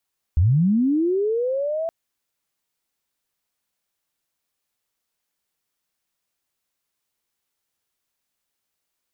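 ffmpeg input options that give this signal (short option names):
-f lavfi -i "aevalsrc='pow(10,(-13-9.5*t/1.52)/20)*sin(2*PI*(72*t+598*t*t/(2*1.52)))':d=1.52:s=44100"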